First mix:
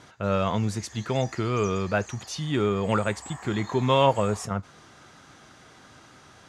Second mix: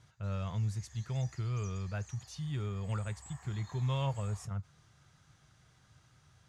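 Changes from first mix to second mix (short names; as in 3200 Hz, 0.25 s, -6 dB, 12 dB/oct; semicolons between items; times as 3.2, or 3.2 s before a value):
speech -4.0 dB; master: add EQ curve 140 Hz 0 dB, 250 Hz -18 dB, 12000 Hz -8 dB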